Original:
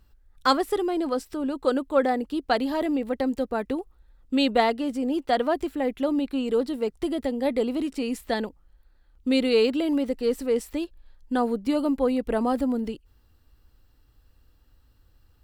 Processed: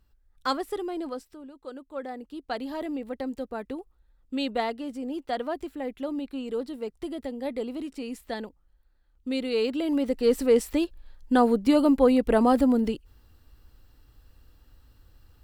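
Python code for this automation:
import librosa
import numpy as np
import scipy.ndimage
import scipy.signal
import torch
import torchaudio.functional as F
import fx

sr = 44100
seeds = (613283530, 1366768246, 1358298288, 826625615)

y = fx.gain(x, sr, db=fx.line((1.06, -6.5), (1.53, -18.5), (2.74, -7.0), (9.47, -7.0), (10.39, 4.0)))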